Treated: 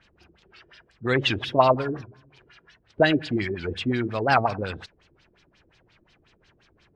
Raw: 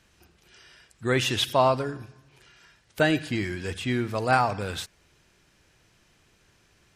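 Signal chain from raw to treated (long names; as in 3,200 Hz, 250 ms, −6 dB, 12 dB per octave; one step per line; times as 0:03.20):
0:01.18–0:02.02: mu-law and A-law mismatch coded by mu
auto-filter low-pass sine 5.6 Hz 320–4,700 Hz
wow of a warped record 78 rpm, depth 160 cents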